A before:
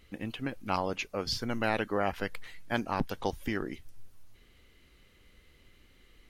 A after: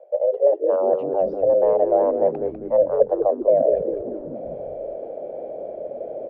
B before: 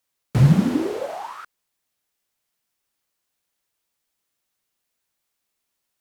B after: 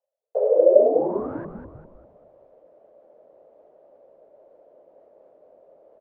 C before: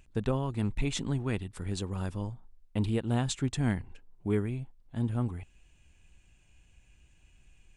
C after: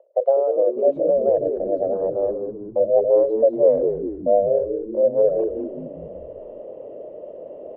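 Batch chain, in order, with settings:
Butterworth band-pass 280 Hz, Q 2.2; frequency shift +290 Hz; reverse; upward compressor, threshold -33 dBFS; reverse; frequency-shifting echo 0.198 s, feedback 49%, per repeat -92 Hz, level -7 dB; match loudness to -20 LUFS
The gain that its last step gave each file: +19.5, +8.0, +17.5 dB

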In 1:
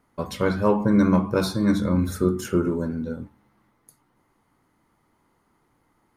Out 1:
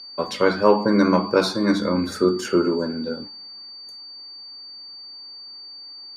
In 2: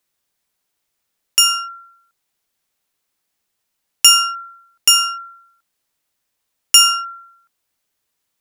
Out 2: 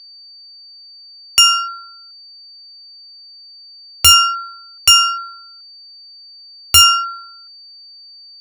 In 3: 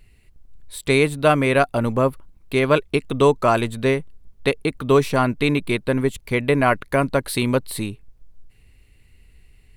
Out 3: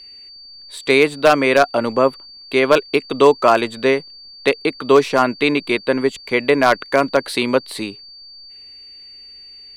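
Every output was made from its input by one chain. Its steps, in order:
whine 4600 Hz -42 dBFS; three-band isolator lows -19 dB, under 240 Hz, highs -15 dB, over 7500 Hz; wavefolder -7 dBFS; normalise peaks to -2 dBFS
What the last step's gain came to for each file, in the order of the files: +6.0, +5.0, +5.0 dB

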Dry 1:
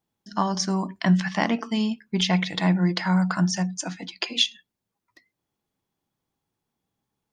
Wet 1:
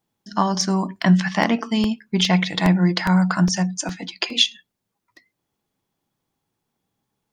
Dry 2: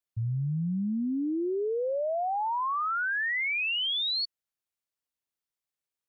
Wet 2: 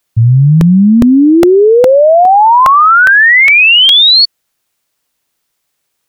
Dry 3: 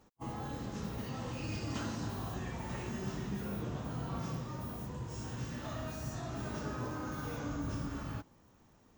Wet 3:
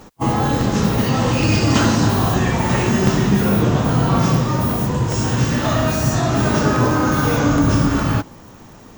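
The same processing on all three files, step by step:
bell 61 Hz -8.5 dB 0.44 oct; crackling interface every 0.41 s, samples 64, repeat, from 0.61; normalise peaks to -2 dBFS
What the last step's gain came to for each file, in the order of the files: +4.5, +24.0, +23.5 dB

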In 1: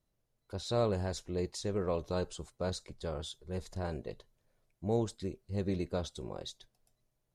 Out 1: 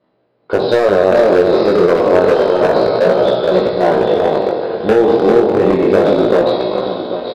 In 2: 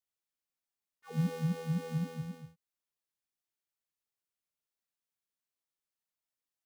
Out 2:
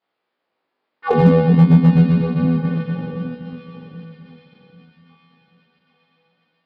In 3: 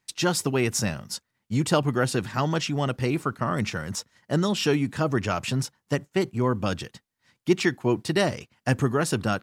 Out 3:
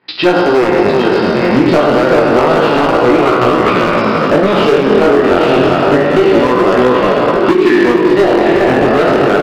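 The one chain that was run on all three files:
spectral trails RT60 2.42 s; HPF 320 Hz 12 dB/oct; echo with dull and thin repeats by turns 0.391 s, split 1200 Hz, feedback 53%, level -2.5 dB; transient shaper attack +10 dB, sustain -6 dB; compressor 5:1, threshold -27 dBFS; tilt shelf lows +5 dB, about 1400 Hz; downsampling 11025 Hz; air absorption 220 m; thin delay 0.805 s, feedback 59%, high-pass 2200 Hz, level -8.5 dB; hard clip -25.5 dBFS; chorus 0.29 Hz, delay 16 ms, depth 7.4 ms; normalise peaks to -2 dBFS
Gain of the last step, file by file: +23.5, +23.5, +23.5 dB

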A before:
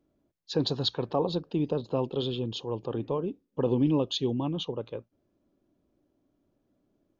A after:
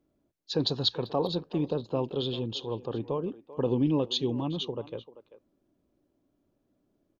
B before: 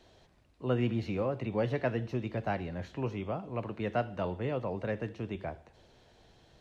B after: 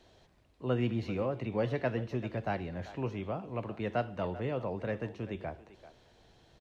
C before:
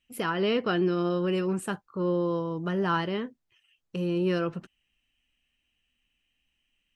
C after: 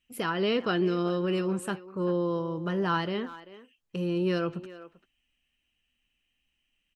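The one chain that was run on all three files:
dynamic EQ 4100 Hz, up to +4 dB, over -50 dBFS, Q 2.3; speakerphone echo 0.39 s, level -15 dB; gain -1 dB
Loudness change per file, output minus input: -0.5, -1.0, -1.0 LU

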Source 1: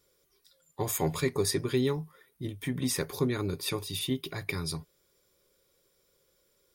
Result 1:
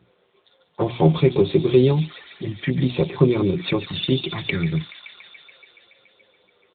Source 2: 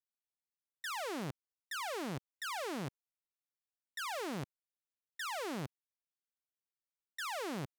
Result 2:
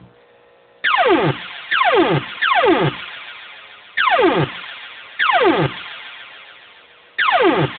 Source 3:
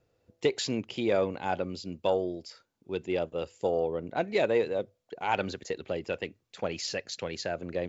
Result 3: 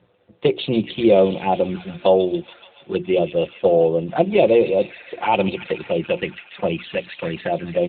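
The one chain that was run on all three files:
on a send: thin delay 0.142 s, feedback 78%, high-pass 2200 Hz, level -7 dB; on the sum: buzz 60 Hz, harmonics 32, -58 dBFS -9 dB/oct; notches 60/120/180/240/300/360 Hz; envelope flanger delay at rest 10.9 ms, full sweep at -28.5 dBFS; comb 5.7 ms, depth 47%; AMR-NB 10.2 kbps 8000 Hz; normalise peaks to -2 dBFS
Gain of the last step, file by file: +13.0, +29.0, +13.0 dB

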